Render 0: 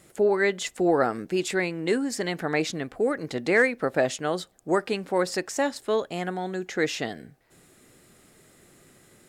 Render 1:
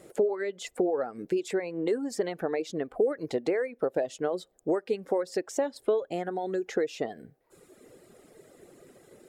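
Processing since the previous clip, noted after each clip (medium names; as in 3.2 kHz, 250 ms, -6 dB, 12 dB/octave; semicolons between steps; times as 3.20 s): compression 16:1, threshold -31 dBFS, peak gain reduction 16.5 dB; reverb removal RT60 1.1 s; peaking EQ 470 Hz +14 dB 1.6 oct; trim -3 dB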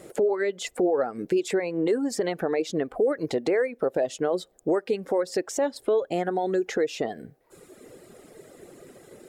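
peak limiter -21.5 dBFS, peak gain reduction 7 dB; trim +6 dB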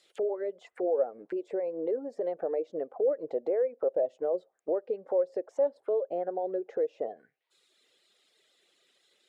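auto-wah 550–4500 Hz, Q 3.6, down, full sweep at -25.5 dBFS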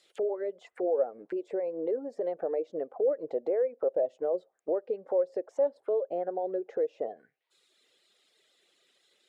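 no audible change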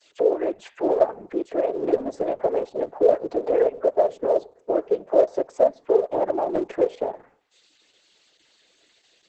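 de-hum 249.4 Hz, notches 19; noise-vocoded speech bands 16; trim +9 dB; Opus 10 kbps 48 kHz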